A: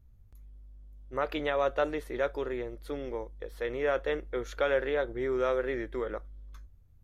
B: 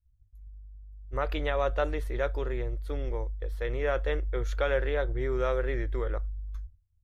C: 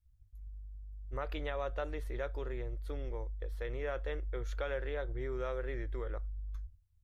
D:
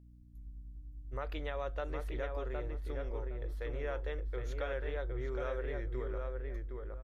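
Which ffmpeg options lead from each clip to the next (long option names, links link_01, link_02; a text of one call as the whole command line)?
ffmpeg -i in.wav -af "agate=range=-33dB:threshold=-42dB:ratio=3:detection=peak,lowshelf=frequency=130:width_type=q:width=1.5:gain=13" out.wav
ffmpeg -i in.wav -af "acompressor=threshold=-41dB:ratio=2" out.wav
ffmpeg -i in.wav -filter_complex "[0:a]aeval=exprs='val(0)+0.00178*(sin(2*PI*60*n/s)+sin(2*PI*2*60*n/s)/2+sin(2*PI*3*60*n/s)/3+sin(2*PI*4*60*n/s)/4+sin(2*PI*5*60*n/s)/5)':channel_layout=same,asplit=2[link_01][link_02];[link_02]adelay=764,lowpass=frequency=2000:poles=1,volume=-3.5dB,asplit=2[link_03][link_04];[link_04]adelay=764,lowpass=frequency=2000:poles=1,volume=0.24,asplit=2[link_05][link_06];[link_06]adelay=764,lowpass=frequency=2000:poles=1,volume=0.24[link_07];[link_01][link_03][link_05][link_07]amix=inputs=4:normalize=0,volume=-1.5dB" out.wav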